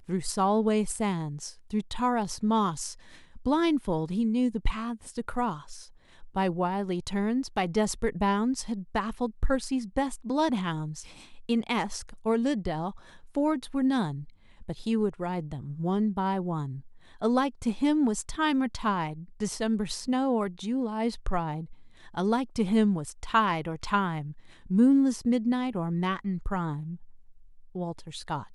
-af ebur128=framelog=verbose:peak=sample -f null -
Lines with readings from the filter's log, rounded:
Integrated loudness:
  I:         -28.7 LUFS
  Threshold: -39.2 LUFS
Loudness range:
  LRA:         4.2 LU
  Threshold: -49.1 LUFS
  LRA low:   -30.8 LUFS
  LRA high:  -26.7 LUFS
Sample peak:
  Peak:       -9.5 dBFS